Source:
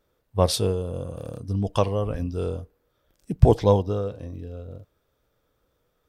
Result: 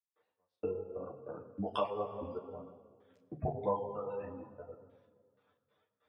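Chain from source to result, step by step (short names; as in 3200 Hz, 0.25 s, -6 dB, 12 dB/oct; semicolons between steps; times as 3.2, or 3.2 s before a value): tone controls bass -7 dB, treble -10 dB; spectral gate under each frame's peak -30 dB strong; reverb removal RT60 0.99 s; step gate ".x..x.x.x.xxx.x" 95 bpm -60 dB; weighting filter A; on a send at -1 dB: reverb RT60 1.7 s, pre-delay 3 ms; on the sum: compressor 2:1, threshold -37 dBFS, peak gain reduction 11.5 dB; ensemble effect; gain +3.5 dB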